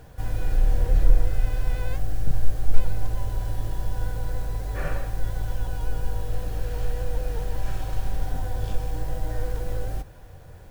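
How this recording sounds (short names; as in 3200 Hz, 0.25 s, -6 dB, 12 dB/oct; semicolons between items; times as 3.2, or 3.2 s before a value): noise floor -44 dBFS; spectral tilt -6.0 dB/oct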